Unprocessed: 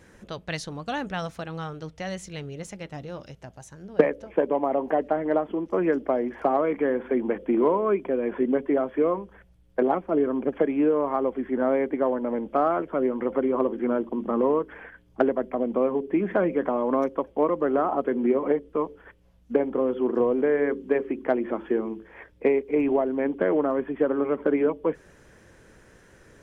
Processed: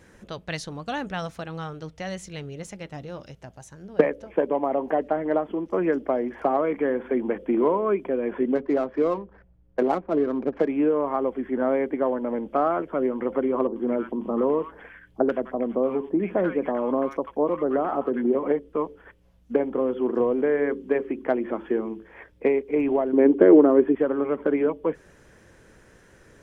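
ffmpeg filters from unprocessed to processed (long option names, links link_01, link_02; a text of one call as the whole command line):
ffmpeg -i in.wav -filter_complex "[0:a]asettb=1/sr,asplit=3[link_01][link_02][link_03];[link_01]atrim=end=8.554[link_04];[link_02]atrim=start=8.55:end=10.68,asetpts=PTS-STARTPTS,afade=type=in:duration=0.004:curve=qsin,afade=type=out:start_time=2.126:duration=0.004:curve=qsin,adynamicsmooth=sensitivity=6:basefreq=1600[link_05];[link_03]atrim=start=10.676[link_06];[link_04][link_05]acrossfade=duration=0.004:curve1=hsin:curve2=qsin[link_07];[link_07][link_06]acrossfade=duration=0.004:curve1=qsin:curve2=hsin,asettb=1/sr,asplit=3[link_08][link_09][link_10];[link_08]atrim=end=13.674[link_11];[link_09]atrim=start=13.67:end=18.35,asetpts=PTS-STARTPTS,afade=type=in:duration=0.004:curve=qsin,afade=type=out:start_time=4.676:duration=0.004:curve=qsin,acrossover=split=1200[link_12][link_13];[link_13]adelay=90[link_14];[link_12][link_14]amix=inputs=2:normalize=0,atrim=end_sample=206388[link_15];[link_10]atrim=start=18.346[link_16];[link_11][link_15]acrossfade=duration=0.004:curve1=hsin:curve2=qsin[link_17];[link_17][link_16]acrossfade=duration=0.004:curve1=qsin:curve2=hsin,asettb=1/sr,asplit=3[link_18][link_19][link_20];[link_18]atrim=end=23.134[link_21];[link_19]atrim=start=23.13:end=23.95,asetpts=PTS-STARTPTS,afade=type=in:duration=0.004:curve=qsin,afade=type=out:start_time=0.816:duration=0.004:curve=qsin,equalizer=frequency=350:width=1.5:gain=14[link_22];[link_20]atrim=start=23.946[link_23];[link_21][link_22]acrossfade=duration=0.004:curve1=hsin:curve2=qsin[link_24];[link_24][link_23]acrossfade=duration=0.004:curve1=qsin:curve2=hsin" out.wav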